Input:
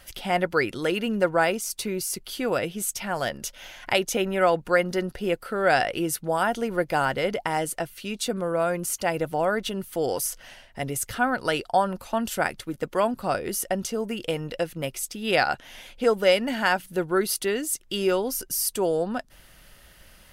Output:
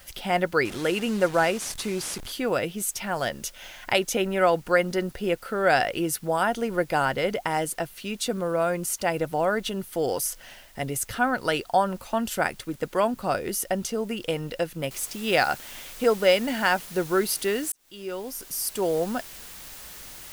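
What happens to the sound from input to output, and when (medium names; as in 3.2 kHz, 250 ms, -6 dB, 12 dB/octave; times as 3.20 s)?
0.65–2.32 s: one-bit delta coder 64 kbps, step -32 dBFS
14.91 s: noise floor step -56 dB -43 dB
17.72–19.01 s: fade in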